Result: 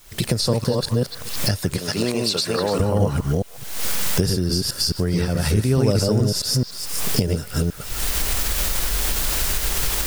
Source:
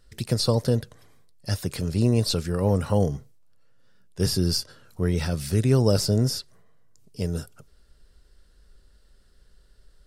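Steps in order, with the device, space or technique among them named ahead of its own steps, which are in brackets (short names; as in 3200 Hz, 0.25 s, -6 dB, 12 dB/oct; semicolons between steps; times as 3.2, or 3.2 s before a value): reverse delay 0.214 s, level -1 dB; 1.79–2.8 weighting filter A; delay with a stepping band-pass 0.146 s, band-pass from 1400 Hz, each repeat 1.4 oct, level -9 dB; cheap recorder with automatic gain (white noise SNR 28 dB; recorder AGC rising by 63 dB/s)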